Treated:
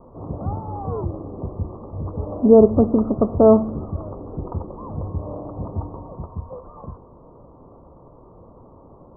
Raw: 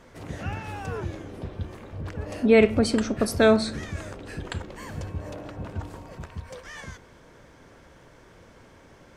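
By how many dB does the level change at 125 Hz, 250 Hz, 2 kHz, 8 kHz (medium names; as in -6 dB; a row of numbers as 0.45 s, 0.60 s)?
+6.0 dB, +6.0 dB, under -30 dB, under -40 dB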